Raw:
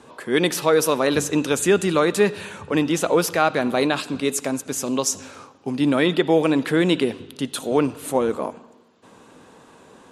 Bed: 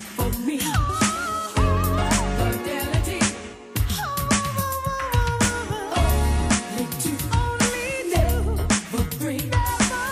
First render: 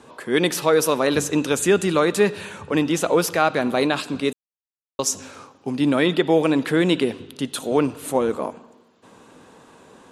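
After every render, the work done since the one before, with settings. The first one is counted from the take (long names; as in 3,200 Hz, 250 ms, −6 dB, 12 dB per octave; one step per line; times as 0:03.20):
0:04.33–0:04.99: silence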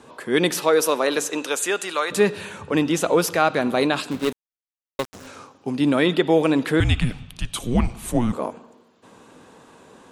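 0:00.59–0:02.10: high-pass filter 220 Hz → 860 Hz
0:04.11–0:05.27: gap after every zero crossing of 0.22 ms
0:06.80–0:08.33: frequency shifter −240 Hz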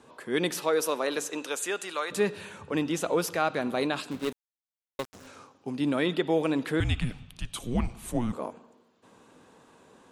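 level −8 dB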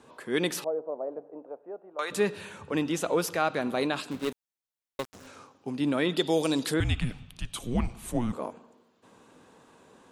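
0:00.64–0:01.99: transistor ladder low-pass 760 Hz, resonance 60%
0:06.17–0:06.74: high shelf with overshoot 3,200 Hz +12 dB, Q 1.5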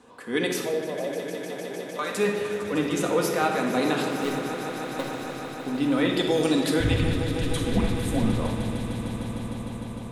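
echo that builds up and dies away 152 ms, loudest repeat 5, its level −14 dB
rectangular room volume 1,900 cubic metres, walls mixed, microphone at 1.9 metres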